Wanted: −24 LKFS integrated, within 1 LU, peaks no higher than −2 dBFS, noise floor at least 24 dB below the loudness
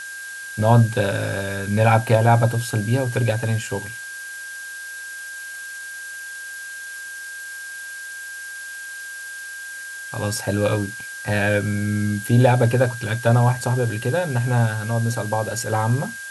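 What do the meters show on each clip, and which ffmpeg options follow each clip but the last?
interfering tone 1,600 Hz; level of the tone −32 dBFS; background noise floor −34 dBFS; target noise floor −47 dBFS; integrated loudness −22.5 LKFS; sample peak −2.0 dBFS; target loudness −24.0 LKFS
→ -af "bandreject=frequency=1600:width=30"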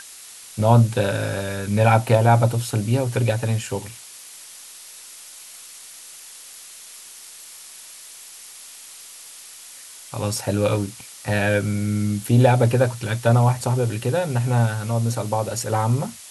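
interfering tone none found; background noise floor −42 dBFS; target noise floor −45 dBFS
→ -af "afftdn=noise_reduction=6:noise_floor=-42"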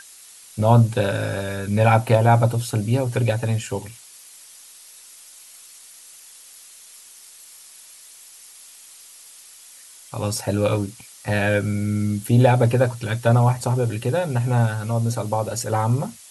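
background noise floor −46 dBFS; integrated loudness −21.0 LKFS; sample peak −2.5 dBFS; target loudness −24.0 LKFS
→ -af "volume=-3dB"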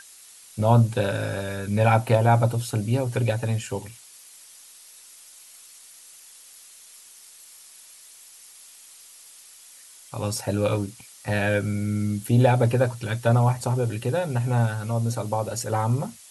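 integrated loudness −24.0 LKFS; sample peak −5.5 dBFS; background noise floor −49 dBFS

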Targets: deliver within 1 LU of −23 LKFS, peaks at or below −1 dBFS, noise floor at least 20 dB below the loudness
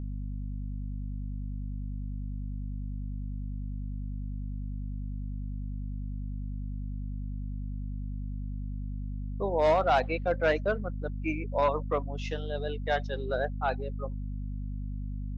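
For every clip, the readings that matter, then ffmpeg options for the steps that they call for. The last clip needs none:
mains hum 50 Hz; hum harmonics up to 250 Hz; level of the hum −32 dBFS; integrated loudness −33.5 LKFS; sample peak −14.5 dBFS; target loudness −23.0 LKFS
→ -af "bandreject=frequency=50:width_type=h:width=6,bandreject=frequency=100:width_type=h:width=6,bandreject=frequency=150:width_type=h:width=6,bandreject=frequency=200:width_type=h:width=6,bandreject=frequency=250:width_type=h:width=6"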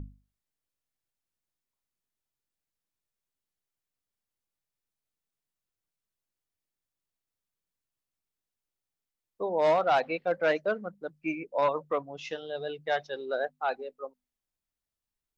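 mains hum none found; integrated loudness −30.0 LKFS; sample peak −15.5 dBFS; target loudness −23.0 LKFS
→ -af "volume=7dB"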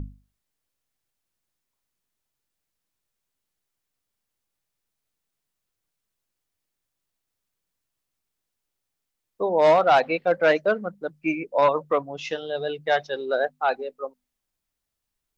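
integrated loudness −23.0 LKFS; sample peak −8.5 dBFS; background noise floor −83 dBFS

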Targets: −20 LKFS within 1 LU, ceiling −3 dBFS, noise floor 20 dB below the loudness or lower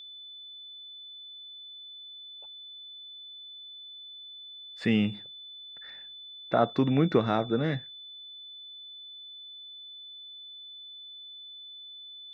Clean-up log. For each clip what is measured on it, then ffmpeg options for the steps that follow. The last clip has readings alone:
interfering tone 3,500 Hz; level of the tone −43 dBFS; integrated loudness −34.0 LKFS; sample peak −9.5 dBFS; target loudness −20.0 LKFS
→ -af "bandreject=frequency=3500:width=30"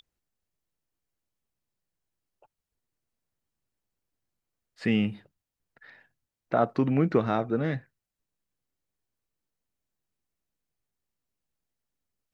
interfering tone none found; integrated loudness −27.5 LKFS; sample peak −9.5 dBFS; target loudness −20.0 LKFS
→ -af "volume=7.5dB,alimiter=limit=-3dB:level=0:latency=1"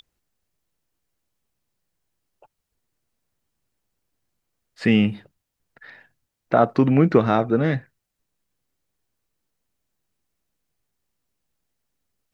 integrated loudness −20.0 LKFS; sample peak −3.0 dBFS; background noise floor −81 dBFS

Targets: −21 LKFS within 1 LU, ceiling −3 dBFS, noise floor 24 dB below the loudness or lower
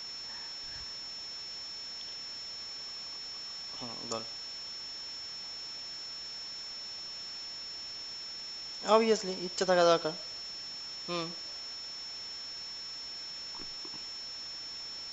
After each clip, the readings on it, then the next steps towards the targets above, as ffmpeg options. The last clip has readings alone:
interfering tone 5,400 Hz; level of the tone −40 dBFS; background noise floor −43 dBFS; target noise floor −60 dBFS; integrated loudness −35.5 LKFS; sample peak −11.0 dBFS; target loudness −21.0 LKFS
→ -af "bandreject=frequency=5400:width=30"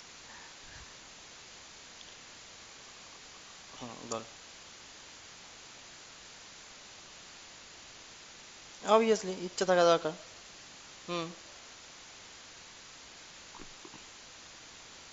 interfering tone none found; background noise floor −52 dBFS; target noise floor −55 dBFS
→ -af "afftdn=noise_reduction=6:noise_floor=-52"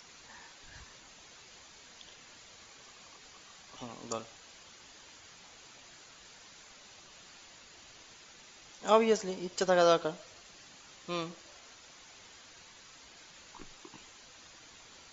background noise floor −56 dBFS; integrated loudness −31.0 LKFS; sample peak −11.0 dBFS; target loudness −21.0 LKFS
→ -af "volume=10dB,alimiter=limit=-3dB:level=0:latency=1"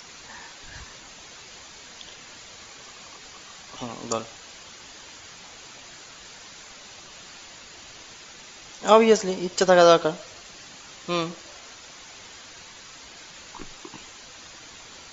integrated loudness −21.0 LKFS; sample peak −3.0 dBFS; background noise floor −46 dBFS

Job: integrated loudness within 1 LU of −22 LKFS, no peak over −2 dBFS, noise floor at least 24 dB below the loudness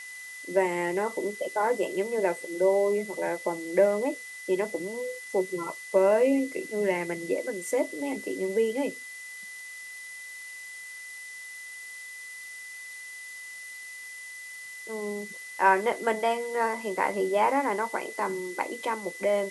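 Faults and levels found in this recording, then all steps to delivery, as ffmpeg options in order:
interfering tone 2,000 Hz; level of the tone −40 dBFS; background noise floor −42 dBFS; target noise floor −52 dBFS; integrated loudness −28.0 LKFS; sample peak −9.0 dBFS; target loudness −22.0 LKFS
→ -af "bandreject=frequency=2000:width=30"
-af "afftdn=noise_reduction=10:noise_floor=-42"
-af "volume=6dB"

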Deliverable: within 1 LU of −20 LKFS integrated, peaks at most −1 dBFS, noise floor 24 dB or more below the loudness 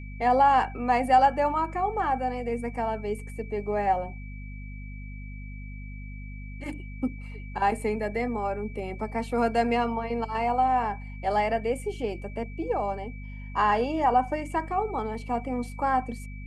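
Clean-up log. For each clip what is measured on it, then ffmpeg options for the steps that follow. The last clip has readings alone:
mains hum 50 Hz; hum harmonics up to 250 Hz; level of the hum −36 dBFS; interfering tone 2,300 Hz; level of the tone −48 dBFS; integrated loudness −27.0 LKFS; sample peak −10.0 dBFS; target loudness −20.0 LKFS
→ -af "bandreject=frequency=50:width_type=h:width=4,bandreject=frequency=100:width_type=h:width=4,bandreject=frequency=150:width_type=h:width=4,bandreject=frequency=200:width_type=h:width=4,bandreject=frequency=250:width_type=h:width=4"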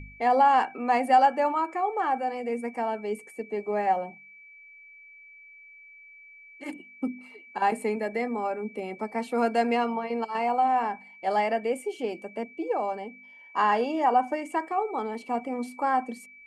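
mains hum none found; interfering tone 2,300 Hz; level of the tone −48 dBFS
→ -af "bandreject=frequency=2300:width=30"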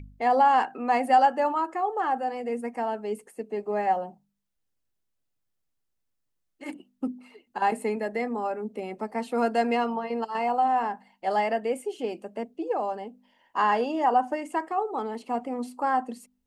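interfering tone none found; integrated loudness −27.0 LKFS; sample peak −10.0 dBFS; target loudness −20.0 LKFS
→ -af "volume=7dB"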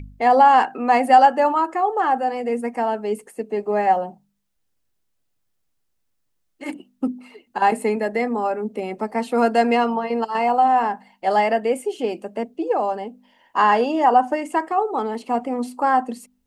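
integrated loudness −20.0 LKFS; sample peak −3.0 dBFS; background noise floor −71 dBFS

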